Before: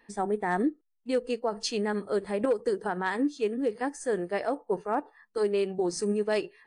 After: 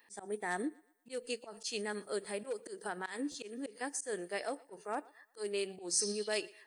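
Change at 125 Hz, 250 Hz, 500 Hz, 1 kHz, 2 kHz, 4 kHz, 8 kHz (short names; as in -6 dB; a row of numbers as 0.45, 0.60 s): -14.0, -12.5, -11.5, -11.0, -6.0, -2.0, +4.0 dB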